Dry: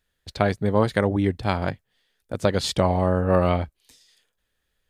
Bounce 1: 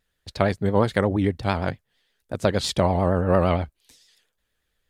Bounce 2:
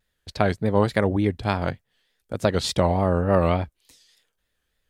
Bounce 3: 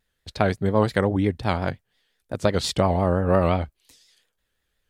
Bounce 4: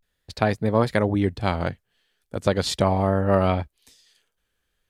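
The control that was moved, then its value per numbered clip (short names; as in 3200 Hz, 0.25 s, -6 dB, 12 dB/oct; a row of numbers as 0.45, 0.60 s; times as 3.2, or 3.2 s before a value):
vibrato, rate: 8.7, 3.4, 5.7, 0.39 Hz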